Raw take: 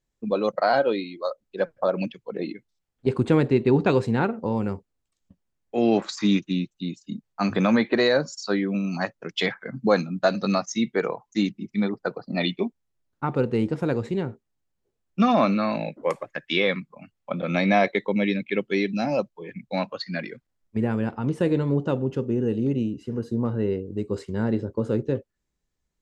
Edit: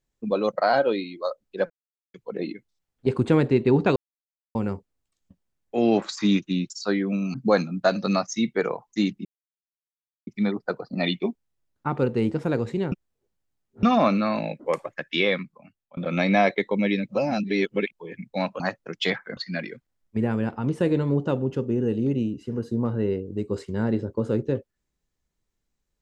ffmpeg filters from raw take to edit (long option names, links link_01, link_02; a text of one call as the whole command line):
ffmpeg -i in.wav -filter_complex "[0:a]asplit=15[link_01][link_02][link_03][link_04][link_05][link_06][link_07][link_08][link_09][link_10][link_11][link_12][link_13][link_14][link_15];[link_01]atrim=end=1.7,asetpts=PTS-STARTPTS,afade=type=out:start_time=1.696:duration=0.004:curve=hsin[link_16];[link_02]atrim=start=1.7:end=2.14,asetpts=PTS-STARTPTS,volume=0[link_17];[link_03]atrim=start=2.14:end=3.96,asetpts=PTS-STARTPTS,afade=type=in:duration=0.004:curve=hsin,afade=type=out:start_time=1.816:duration=0.004:curve=hsin[link_18];[link_04]atrim=start=3.96:end=4.55,asetpts=PTS-STARTPTS,volume=0[link_19];[link_05]atrim=start=4.55:end=6.702,asetpts=PTS-STARTPTS,afade=type=in:duration=0.004:curve=hsin[link_20];[link_06]atrim=start=8.318:end=8.962[link_21];[link_07]atrim=start=9.728:end=11.64,asetpts=PTS-STARTPTS,afade=type=out:start_time=1.908:duration=0.004:curve=hsin,apad=pad_dur=1.02[link_22];[link_08]atrim=start=11.64:end=14.292,asetpts=PTS-STARTPTS,afade=type=in:duration=0.004:curve=hsin[link_23];[link_09]atrim=start=14.288:end=15.202,asetpts=PTS-STARTPTS,areverse[link_24];[link_10]atrim=start=15.198:end=17.34,asetpts=PTS-STARTPTS,afade=type=out:start_time=1.452:duration=0.69:silence=0.0749894[link_25];[link_11]atrim=start=17.34:end=18.452,asetpts=PTS-STARTPTS,afade=type=in:duration=0.004:curve=hsin:silence=0.0749894[link_26];[link_12]atrim=start=18.448:end=19.292,asetpts=PTS-STARTPTS,areverse[link_27];[link_13]atrim=start=19.288:end=19.972[link_28];[link_14]atrim=start=8.958:end=9.732[link_29];[link_15]atrim=start=19.968[link_30];[link_16][link_17][link_18][link_19][link_20]concat=n=5:v=0:a=1[link_31];[link_31][link_21]acrossfade=duration=0.004:curve1=hsin:curve2=hsin[link_32];[link_22][link_23]concat=n=2:v=0:a=1[link_33];[link_32][link_33]acrossfade=duration=0.004:curve1=hsin:curve2=hsin[link_34];[link_34][link_24]acrossfade=duration=0.004:curve1=hsin:curve2=hsin[link_35];[link_25][link_26]concat=n=2:v=0:a=1[link_36];[link_35][link_36]acrossfade=duration=0.004:curve1=hsin:curve2=hsin[link_37];[link_37][link_27]acrossfade=duration=0.004:curve1=hsin:curve2=hsin[link_38];[link_38][link_28]acrossfade=duration=0.004:curve1=hsin:curve2=hsin[link_39];[link_39][link_29]acrossfade=duration=0.004:curve1=hsin:curve2=hsin[link_40];[link_40][link_30]acrossfade=duration=0.004:curve1=hsin:curve2=hsin" out.wav